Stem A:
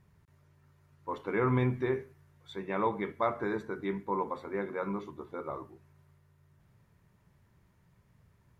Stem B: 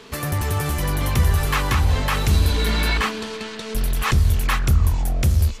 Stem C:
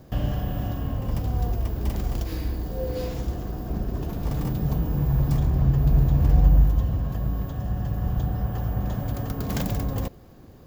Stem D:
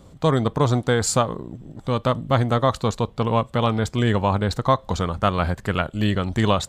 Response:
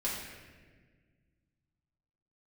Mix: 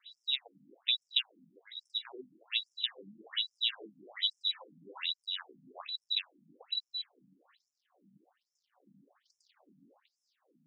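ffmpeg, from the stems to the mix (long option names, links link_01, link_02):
-filter_complex "[0:a]lowpass=frequency=2000:width_type=q:width=9.1,adelay=300,volume=-14dB[link_01];[1:a]adelay=1950,volume=-16dB[link_02];[2:a]equalizer=frequency=5400:width_type=o:width=1.6:gain=11.5,acompressor=threshold=-38dB:ratio=2.5,asoftclip=type=tanh:threshold=-36.5dB,volume=-14dB[link_03];[3:a]volume=-3.5dB,asplit=2[link_04][link_05];[link_05]apad=whole_len=392475[link_06];[link_01][link_06]sidechaingate=range=-16dB:threshold=-37dB:ratio=16:detection=peak[link_07];[link_02][link_04]amix=inputs=2:normalize=0,lowpass=frequency=3400:width_type=q:width=0.5098,lowpass=frequency=3400:width_type=q:width=0.6013,lowpass=frequency=3400:width_type=q:width=0.9,lowpass=frequency=3400:width_type=q:width=2.563,afreqshift=-4000,acompressor=threshold=-26dB:ratio=3,volume=0dB[link_08];[link_07][link_03][link_08]amix=inputs=3:normalize=0,equalizer=frequency=6600:width=3.3:gain=-6,afftfilt=real='re*between(b*sr/1024,200*pow(7400/200,0.5+0.5*sin(2*PI*1.2*pts/sr))/1.41,200*pow(7400/200,0.5+0.5*sin(2*PI*1.2*pts/sr))*1.41)':imag='im*between(b*sr/1024,200*pow(7400/200,0.5+0.5*sin(2*PI*1.2*pts/sr))/1.41,200*pow(7400/200,0.5+0.5*sin(2*PI*1.2*pts/sr))*1.41)':win_size=1024:overlap=0.75"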